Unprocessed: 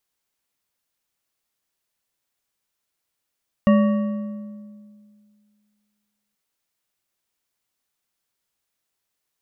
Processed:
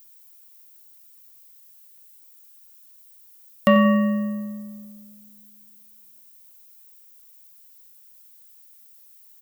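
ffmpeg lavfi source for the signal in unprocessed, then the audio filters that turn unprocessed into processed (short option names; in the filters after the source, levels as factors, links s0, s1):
-f lavfi -i "aevalsrc='0.282*pow(10,-3*t/2.18)*sin(2*PI*209*t)+0.133*pow(10,-3*t/1.608)*sin(2*PI*576.2*t)+0.0631*pow(10,-3*t/1.314)*sin(2*PI*1129.4*t)+0.0299*pow(10,-3*t/1.13)*sin(2*PI*1867*t)+0.0141*pow(10,-3*t/1.002)*sin(2*PI*2788.1*t)':d=2.68:s=44100"
-filter_complex "[0:a]aemphasis=mode=production:type=riaa,acontrast=74,asplit=2[s0][s1];[s1]adelay=91,lowpass=f=2000:p=1,volume=0.251,asplit=2[s2][s3];[s3]adelay=91,lowpass=f=2000:p=1,volume=0.54,asplit=2[s4][s5];[s5]adelay=91,lowpass=f=2000:p=1,volume=0.54,asplit=2[s6][s7];[s7]adelay=91,lowpass=f=2000:p=1,volume=0.54,asplit=2[s8][s9];[s9]adelay=91,lowpass=f=2000:p=1,volume=0.54,asplit=2[s10][s11];[s11]adelay=91,lowpass=f=2000:p=1,volume=0.54[s12];[s2][s4][s6][s8][s10][s12]amix=inputs=6:normalize=0[s13];[s0][s13]amix=inputs=2:normalize=0"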